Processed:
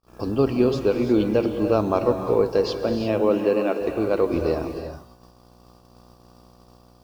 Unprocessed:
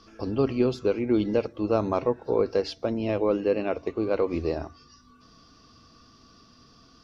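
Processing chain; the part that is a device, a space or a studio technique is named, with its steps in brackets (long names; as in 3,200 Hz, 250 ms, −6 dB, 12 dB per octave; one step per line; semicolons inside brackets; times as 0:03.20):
video cassette with head-switching buzz (hum with harmonics 60 Hz, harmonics 21, −48 dBFS −3 dB per octave; white noise bed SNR 35 dB)
0:03.03–0:03.80: high-pass filter 81 Hz → 280 Hz 24 dB per octave
noise gate −44 dBFS, range −38 dB
notch filter 2,100 Hz, Q 9.8
reverb whose tail is shaped and stops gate 380 ms rising, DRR 6 dB
level +3.5 dB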